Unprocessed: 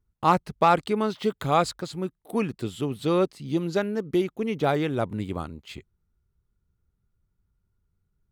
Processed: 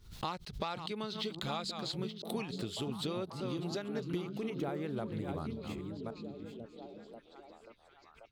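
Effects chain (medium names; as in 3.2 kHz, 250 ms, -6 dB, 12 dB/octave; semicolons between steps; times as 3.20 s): chunks repeated in reverse 555 ms, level -11.5 dB; peaking EQ 4 kHz +15 dB 1.3 oct, from 2.56 s +7.5 dB, from 4.50 s -6.5 dB; compression 12:1, threshold -29 dBFS, peak gain reduction 17.5 dB; repeats whose band climbs or falls 537 ms, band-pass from 160 Hz, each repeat 0.7 oct, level -2 dB; swell ahead of each attack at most 110 dB/s; trim -5.5 dB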